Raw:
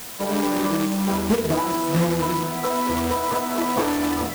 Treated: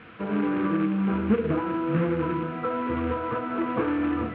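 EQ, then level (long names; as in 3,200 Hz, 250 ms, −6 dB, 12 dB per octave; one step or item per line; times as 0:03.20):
high-frequency loss of the air 490 metres
loudspeaker in its box 110–2,600 Hz, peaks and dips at 170 Hz −8 dB, 260 Hz −7 dB, 400 Hz −8 dB, 580 Hz −5 dB, 850 Hz −4 dB, 1,900 Hz −7 dB
flat-topped bell 790 Hz −9 dB 1.1 octaves
+4.5 dB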